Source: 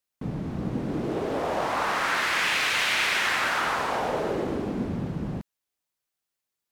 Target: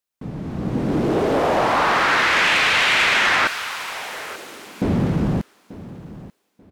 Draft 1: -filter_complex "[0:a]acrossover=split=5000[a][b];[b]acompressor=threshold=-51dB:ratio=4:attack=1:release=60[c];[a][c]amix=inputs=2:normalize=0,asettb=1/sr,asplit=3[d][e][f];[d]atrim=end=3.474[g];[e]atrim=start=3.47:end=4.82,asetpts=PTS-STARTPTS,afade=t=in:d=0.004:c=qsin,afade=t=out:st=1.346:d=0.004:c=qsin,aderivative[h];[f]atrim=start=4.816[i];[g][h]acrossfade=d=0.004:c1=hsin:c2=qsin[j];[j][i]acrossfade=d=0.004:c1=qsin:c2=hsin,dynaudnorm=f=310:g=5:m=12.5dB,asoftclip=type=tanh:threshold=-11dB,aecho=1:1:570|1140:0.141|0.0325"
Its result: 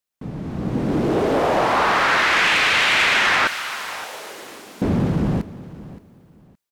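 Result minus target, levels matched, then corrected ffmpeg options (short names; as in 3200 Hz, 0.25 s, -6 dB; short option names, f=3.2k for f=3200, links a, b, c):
echo 0.317 s early
-filter_complex "[0:a]acrossover=split=5000[a][b];[b]acompressor=threshold=-51dB:ratio=4:attack=1:release=60[c];[a][c]amix=inputs=2:normalize=0,asettb=1/sr,asplit=3[d][e][f];[d]atrim=end=3.474[g];[e]atrim=start=3.47:end=4.82,asetpts=PTS-STARTPTS,afade=t=in:d=0.004:c=qsin,afade=t=out:st=1.346:d=0.004:c=qsin,aderivative[h];[f]atrim=start=4.816[i];[g][h]acrossfade=d=0.004:c1=hsin:c2=qsin[j];[j][i]acrossfade=d=0.004:c1=qsin:c2=hsin,dynaudnorm=f=310:g=5:m=12.5dB,asoftclip=type=tanh:threshold=-11dB,aecho=1:1:887|1774:0.141|0.0325"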